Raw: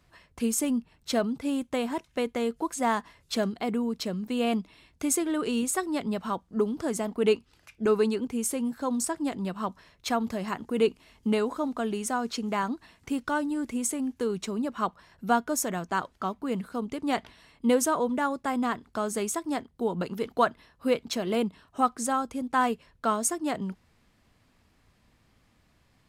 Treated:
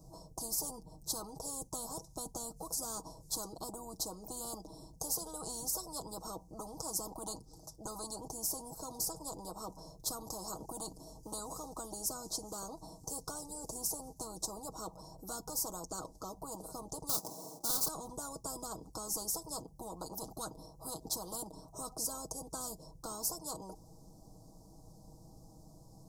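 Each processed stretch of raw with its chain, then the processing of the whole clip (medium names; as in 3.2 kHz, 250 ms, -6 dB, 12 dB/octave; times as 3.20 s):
17.09–17.88 s: square wave that keeps the level + high-pass 250 Hz + loudspeaker Doppler distortion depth 0.25 ms
whole clip: elliptic band-stop 840–5500 Hz, stop band 60 dB; comb 6.3 ms, depth 70%; spectrum-flattening compressor 10:1; trim -3.5 dB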